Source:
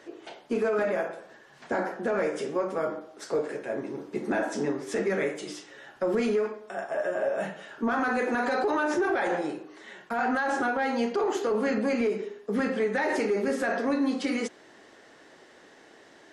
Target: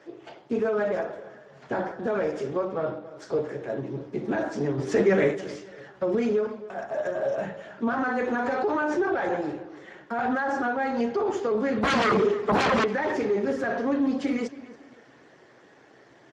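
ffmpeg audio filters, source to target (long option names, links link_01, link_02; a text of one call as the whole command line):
ffmpeg -i in.wav -filter_complex "[0:a]equalizer=frequency=130:width_type=o:width=0.31:gain=14,asplit=3[link_01][link_02][link_03];[link_01]afade=type=out:start_time=4.77:duration=0.02[link_04];[link_02]acontrast=57,afade=type=in:start_time=4.77:duration=0.02,afade=type=out:start_time=5.34:duration=0.02[link_05];[link_03]afade=type=in:start_time=5.34:duration=0.02[link_06];[link_04][link_05][link_06]amix=inputs=3:normalize=0,asettb=1/sr,asplit=3[link_07][link_08][link_09];[link_07]atrim=end=11.834[link_10];[link_08]atrim=start=11.83:end=12.84,asetpts=PTS-STARTPTS,afade=type=in:duration=0.004:curve=qsin,afade=type=out:start_time=1.006:duration=0.004:curve=qsin,aeval=exprs='0.126*sin(PI/2*3.98*val(0)/0.126)':channel_layout=same[link_11];[link_09]atrim=start=12.836[link_12];[link_10][link_11]acrossfade=duration=0.004:curve1=hsin:curve2=qsin[link_13];[link_13][link_12]acrossfade=duration=0.004:curve1=qsin:curve2=hsin,asplit=2[link_14][link_15];[link_15]adelay=279,lowpass=frequency=4500:poles=1,volume=-17dB,asplit=2[link_16][link_17];[link_17]adelay=279,lowpass=frequency=4500:poles=1,volume=0.35,asplit=2[link_18][link_19];[link_19]adelay=279,lowpass=frequency=4500:poles=1,volume=0.35[link_20];[link_14][link_16][link_18][link_20]amix=inputs=4:normalize=0,asettb=1/sr,asplit=3[link_21][link_22][link_23];[link_21]atrim=end=2.654[link_24];[link_22]atrim=start=2.65:end=3.06,asetpts=PTS-STARTPTS,afade=type=in:duration=0.004:curve=qsin,afade=type=out:start_time=0.406:duration=0.004:curve=qsin,adynamicsmooth=sensitivity=2:basefreq=4700[link_25];[link_23]atrim=start=3.056[link_26];[link_24][link_25]acrossfade=duration=0.004:curve1=hsin:curve2=qsin[link_27];[link_27][link_26]acrossfade=duration=0.004:curve1=qsin:curve2=hsin,aemphasis=mode=reproduction:type=cd" -ar 32000 -c:a libspeex -b:a 15k out.spx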